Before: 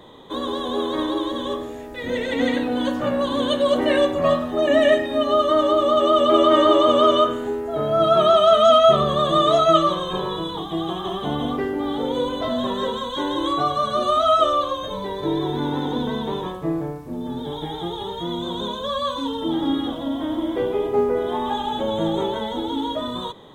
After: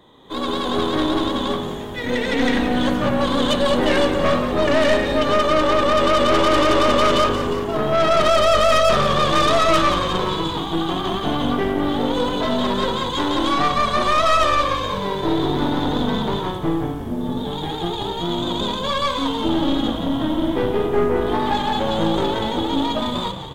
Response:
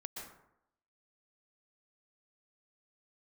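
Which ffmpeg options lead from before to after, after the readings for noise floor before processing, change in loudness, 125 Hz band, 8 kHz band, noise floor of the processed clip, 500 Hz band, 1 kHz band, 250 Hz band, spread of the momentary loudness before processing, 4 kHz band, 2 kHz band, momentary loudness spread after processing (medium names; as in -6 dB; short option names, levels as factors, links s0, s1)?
-32 dBFS, +1.5 dB, +5.5 dB, no reading, -27 dBFS, -0.5 dB, +1.5 dB, +3.0 dB, 13 LU, +3.5 dB, +7.5 dB, 8 LU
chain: -filter_complex "[0:a]equalizer=f=540:w=1.9:g=-3.5,aeval=exprs='(tanh(11.2*val(0)+0.7)-tanh(0.7))/11.2':c=same,asplit=8[s0][s1][s2][s3][s4][s5][s6][s7];[s1]adelay=177,afreqshift=-51,volume=0.316[s8];[s2]adelay=354,afreqshift=-102,volume=0.191[s9];[s3]adelay=531,afreqshift=-153,volume=0.114[s10];[s4]adelay=708,afreqshift=-204,volume=0.0684[s11];[s5]adelay=885,afreqshift=-255,volume=0.0412[s12];[s6]adelay=1062,afreqshift=-306,volume=0.0245[s13];[s7]adelay=1239,afreqshift=-357,volume=0.0148[s14];[s0][s8][s9][s10][s11][s12][s13][s14]amix=inputs=8:normalize=0,dynaudnorm=f=210:g=3:m=2.99,volume=0.841"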